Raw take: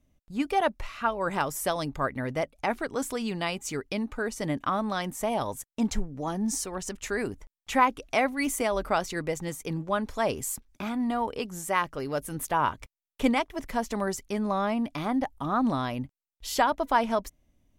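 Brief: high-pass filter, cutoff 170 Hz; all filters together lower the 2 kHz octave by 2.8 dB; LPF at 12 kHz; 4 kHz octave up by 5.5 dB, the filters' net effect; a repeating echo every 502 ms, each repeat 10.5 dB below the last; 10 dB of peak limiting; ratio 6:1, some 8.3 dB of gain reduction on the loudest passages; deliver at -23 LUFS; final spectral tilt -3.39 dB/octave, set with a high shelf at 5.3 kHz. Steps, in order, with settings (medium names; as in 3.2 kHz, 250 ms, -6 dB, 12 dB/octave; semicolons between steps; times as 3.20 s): high-pass 170 Hz; low-pass 12 kHz; peaking EQ 2 kHz -6 dB; peaking EQ 4 kHz +7.5 dB; treble shelf 5.3 kHz +4.5 dB; compression 6:1, threshold -27 dBFS; peak limiter -24 dBFS; feedback delay 502 ms, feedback 30%, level -10.5 dB; trim +11.5 dB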